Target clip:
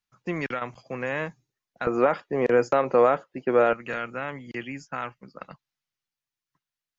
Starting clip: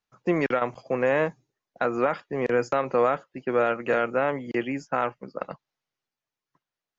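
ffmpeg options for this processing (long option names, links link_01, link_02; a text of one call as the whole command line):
ffmpeg -i in.wav -af "asetnsamples=nb_out_samples=441:pad=0,asendcmd='1.87 equalizer g 3.5;3.73 equalizer g -11.5',equalizer=frequency=510:width_type=o:width=2.3:gain=-9" out.wav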